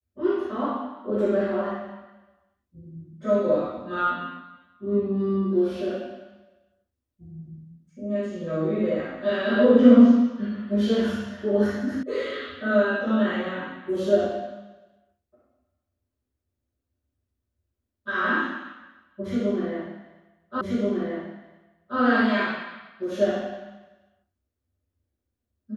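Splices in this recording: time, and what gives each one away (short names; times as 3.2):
12.03 sound cut off
20.61 repeat of the last 1.38 s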